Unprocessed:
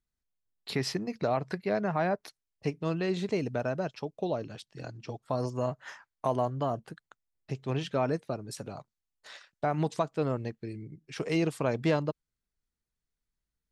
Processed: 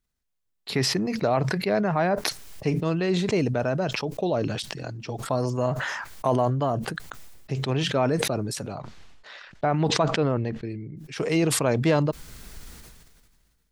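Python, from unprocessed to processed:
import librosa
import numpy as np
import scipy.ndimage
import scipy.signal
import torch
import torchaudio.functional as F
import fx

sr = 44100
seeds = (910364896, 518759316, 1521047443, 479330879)

y = fx.lowpass(x, sr, hz=3900.0, slope=12, at=(8.75, 10.97))
y = fx.sustainer(y, sr, db_per_s=31.0)
y = F.gain(torch.from_numpy(y), 5.0).numpy()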